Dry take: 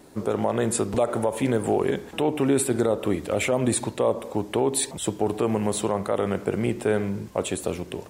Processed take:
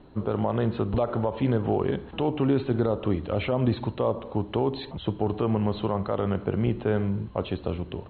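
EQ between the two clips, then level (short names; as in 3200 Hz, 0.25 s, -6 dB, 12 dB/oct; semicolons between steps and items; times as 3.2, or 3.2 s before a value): rippled Chebyshev low-pass 4200 Hz, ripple 6 dB; low shelf 94 Hz +10.5 dB; low shelf 300 Hz +9 dB; -2.0 dB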